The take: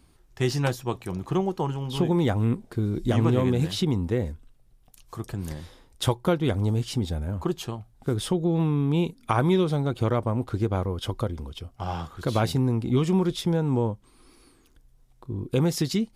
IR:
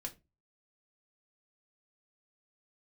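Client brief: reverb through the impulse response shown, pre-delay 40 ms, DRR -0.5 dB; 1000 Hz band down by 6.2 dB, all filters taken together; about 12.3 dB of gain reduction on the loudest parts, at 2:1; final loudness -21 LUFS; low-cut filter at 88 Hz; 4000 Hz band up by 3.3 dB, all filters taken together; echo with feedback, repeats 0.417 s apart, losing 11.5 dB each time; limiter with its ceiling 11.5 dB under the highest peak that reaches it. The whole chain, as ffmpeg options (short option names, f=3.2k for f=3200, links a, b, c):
-filter_complex "[0:a]highpass=88,equalizer=f=1k:t=o:g=-8.5,equalizer=f=4k:t=o:g=4.5,acompressor=threshold=-42dB:ratio=2,alimiter=level_in=8dB:limit=-24dB:level=0:latency=1,volume=-8dB,aecho=1:1:417|834|1251:0.266|0.0718|0.0194,asplit=2[a][b];[1:a]atrim=start_sample=2205,adelay=40[c];[b][c]afir=irnorm=-1:irlink=0,volume=3dB[d];[a][d]amix=inputs=2:normalize=0,volume=17dB"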